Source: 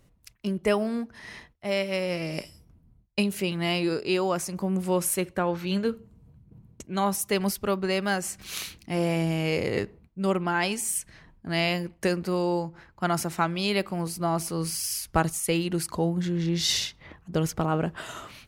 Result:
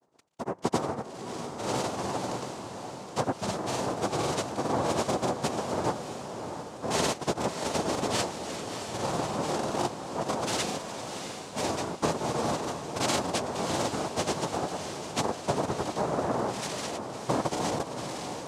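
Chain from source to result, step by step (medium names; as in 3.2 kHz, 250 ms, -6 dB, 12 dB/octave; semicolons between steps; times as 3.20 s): median filter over 9 samples; in parallel at -1.5 dB: gain riding within 4 dB 0.5 s; on the sum: noise-vocoded speech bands 2; granulator, pitch spread up and down by 0 st; echo that smears into a reverb 662 ms, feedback 47%, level -7.5 dB; trim -7 dB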